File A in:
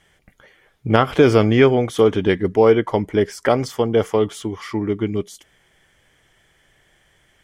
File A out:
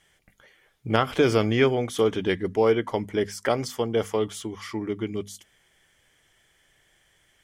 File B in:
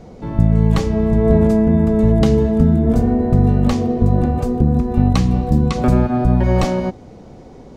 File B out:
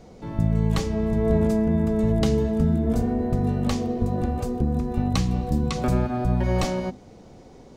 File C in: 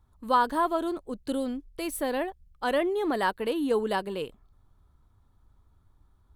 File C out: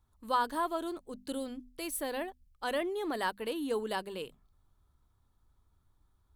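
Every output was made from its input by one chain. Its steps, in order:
high-shelf EQ 2,600 Hz +7 dB
mains-hum notches 50/100/150/200/250 Hz
level −7.5 dB

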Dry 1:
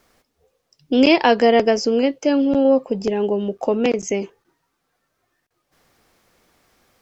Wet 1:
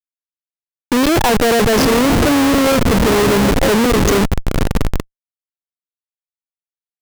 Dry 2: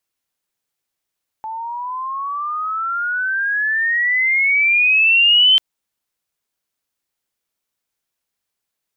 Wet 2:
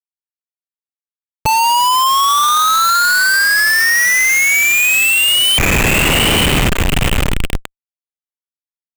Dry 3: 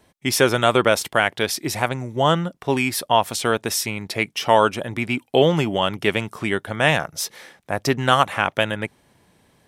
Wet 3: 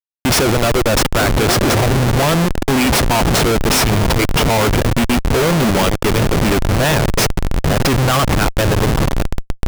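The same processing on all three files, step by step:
feedback delay with all-pass diffusion 903 ms, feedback 53%, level −13 dB
comparator with hysteresis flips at −24.5 dBFS
level +8 dB

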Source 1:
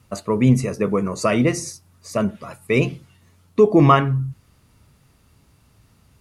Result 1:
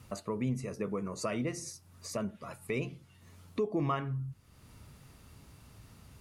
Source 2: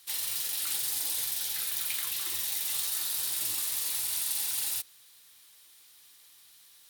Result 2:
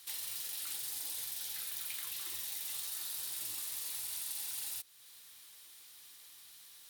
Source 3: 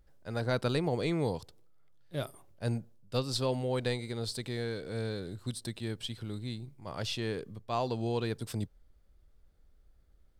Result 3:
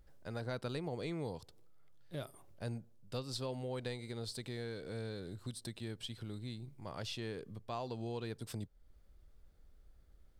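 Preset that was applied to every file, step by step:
downward compressor 2 to 1, threshold −47 dBFS
level +1 dB

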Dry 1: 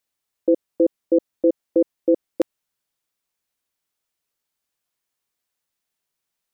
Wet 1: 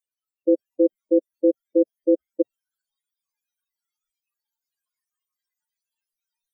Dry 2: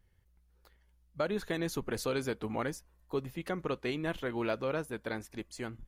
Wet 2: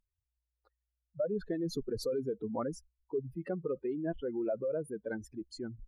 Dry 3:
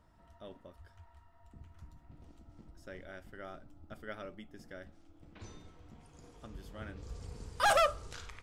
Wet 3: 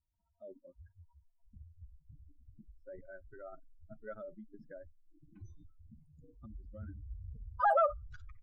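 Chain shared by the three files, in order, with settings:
expanding power law on the bin magnitudes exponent 2.8
noise reduction from a noise print of the clip's start 20 dB

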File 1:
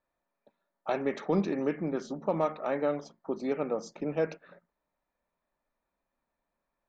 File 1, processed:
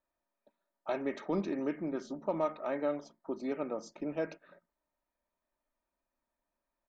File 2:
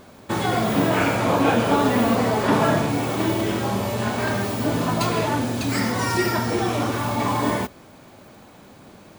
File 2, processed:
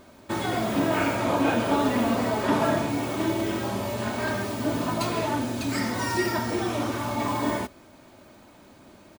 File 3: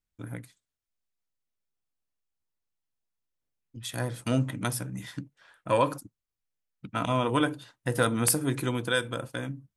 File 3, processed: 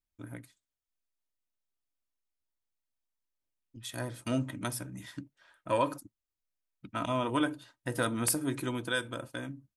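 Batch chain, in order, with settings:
comb filter 3.2 ms, depth 35%
level −5 dB

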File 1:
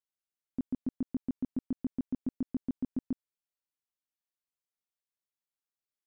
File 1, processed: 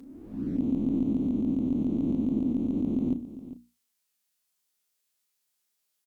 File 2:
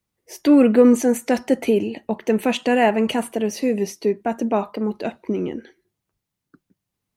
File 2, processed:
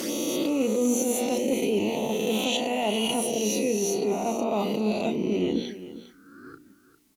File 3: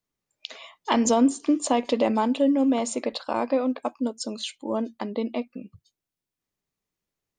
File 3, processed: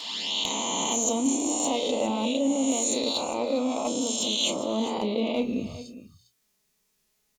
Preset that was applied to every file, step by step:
peak hold with a rise ahead of every peak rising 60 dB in 1.41 s
high-shelf EQ 2,700 Hz +10 dB
mains-hum notches 60/120/180/240/300 Hz
reversed playback
downward compressor 8 to 1, threshold −30 dBFS
reversed playback
asymmetric clip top −24.5 dBFS
flanger swept by the level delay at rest 4.8 ms, full sweep at −32 dBFS
double-tracking delay 33 ms −11 dB
on a send: single-tap delay 403 ms −14.5 dB
on the sum: level +7.5 dB

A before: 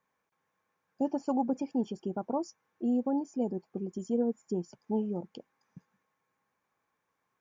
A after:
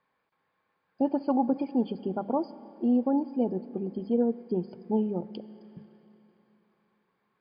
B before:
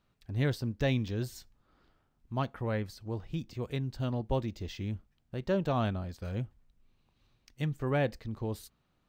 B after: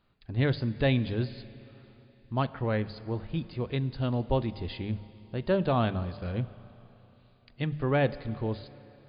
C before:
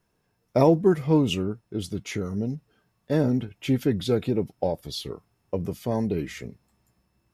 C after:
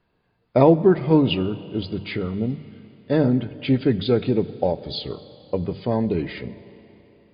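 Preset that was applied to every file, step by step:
mains-hum notches 50/100/150/200 Hz
four-comb reverb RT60 3.4 s, combs from 29 ms, DRR 16 dB
level +4.5 dB
MP3 64 kbit/s 11,025 Hz

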